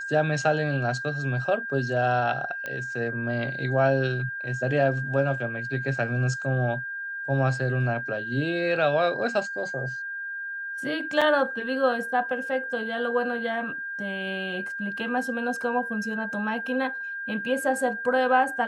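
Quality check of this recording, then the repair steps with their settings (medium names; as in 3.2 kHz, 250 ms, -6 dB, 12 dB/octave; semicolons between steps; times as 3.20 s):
whine 1.6 kHz -31 dBFS
2.66 s: pop -19 dBFS
11.21–11.22 s: dropout 5.5 ms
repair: de-click; band-stop 1.6 kHz, Q 30; interpolate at 11.21 s, 5.5 ms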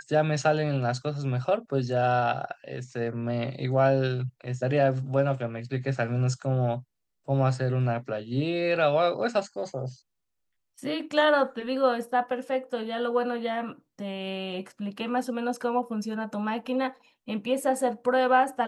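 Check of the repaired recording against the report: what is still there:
nothing left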